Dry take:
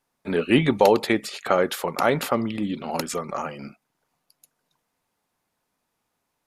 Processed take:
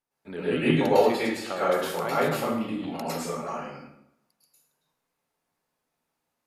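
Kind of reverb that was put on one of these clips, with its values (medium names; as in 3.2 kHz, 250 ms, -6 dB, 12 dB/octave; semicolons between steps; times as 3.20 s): plate-style reverb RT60 0.77 s, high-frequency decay 0.75×, pre-delay 95 ms, DRR -9.5 dB; trim -13 dB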